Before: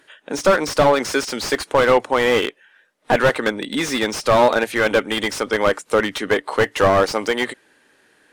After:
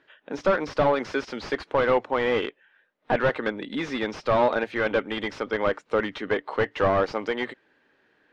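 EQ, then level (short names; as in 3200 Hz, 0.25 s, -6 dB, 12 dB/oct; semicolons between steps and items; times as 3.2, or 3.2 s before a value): air absorption 220 m; -6.0 dB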